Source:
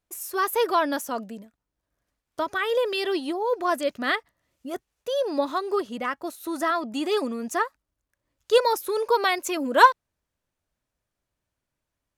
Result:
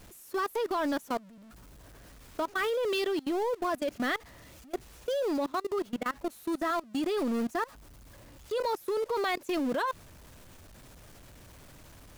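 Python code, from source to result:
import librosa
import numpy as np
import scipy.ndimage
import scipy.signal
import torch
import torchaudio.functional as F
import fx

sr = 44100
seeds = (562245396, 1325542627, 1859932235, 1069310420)

y = x + 0.5 * 10.0 ** (-28.0 / 20.0) * np.sign(x)
y = fx.low_shelf(y, sr, hz=500.0, db=5.5)
y = fx.level_steps(y, sr, step_db=23)
y = y * librosa.db_to_amplitude(-6.0)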